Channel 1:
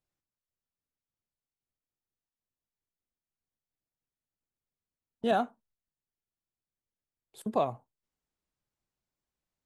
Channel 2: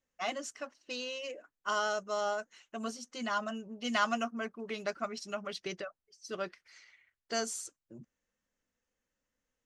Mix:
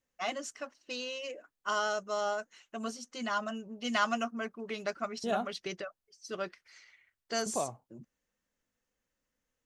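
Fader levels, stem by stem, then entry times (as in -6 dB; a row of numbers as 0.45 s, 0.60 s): -6.0 dB, +0.5 dB; 0.00 s, 0.00 s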